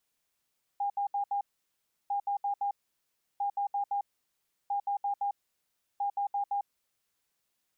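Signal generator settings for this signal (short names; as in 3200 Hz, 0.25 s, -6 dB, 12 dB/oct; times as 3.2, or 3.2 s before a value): beep pattern sine 807 Hz, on 0.10 s, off 0.07 s, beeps 4, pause 0.69 s, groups 5, -27.5 dBFS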